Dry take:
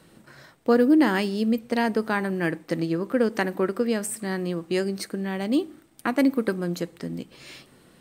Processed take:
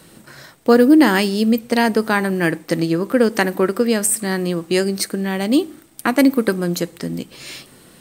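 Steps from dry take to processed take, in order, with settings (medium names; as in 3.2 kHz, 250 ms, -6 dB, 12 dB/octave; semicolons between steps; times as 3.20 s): treble shelf 4.7 kHz +8.5 dB; trim +7 dB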